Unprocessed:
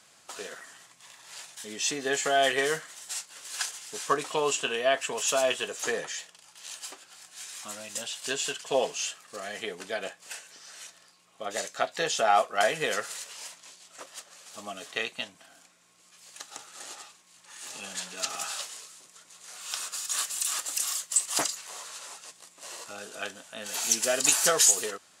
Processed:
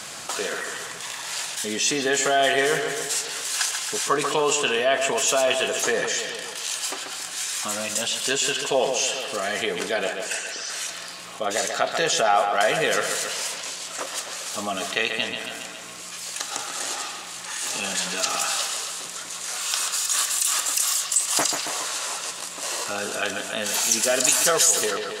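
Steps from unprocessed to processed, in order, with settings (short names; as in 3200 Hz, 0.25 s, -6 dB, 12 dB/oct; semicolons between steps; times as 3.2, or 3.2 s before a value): 10.25–10.7 formant sharpening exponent 1.5; analogue delay 0.138 s, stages 4096, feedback 48%, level -11 dB; fast leveller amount 50%; gain +1 dB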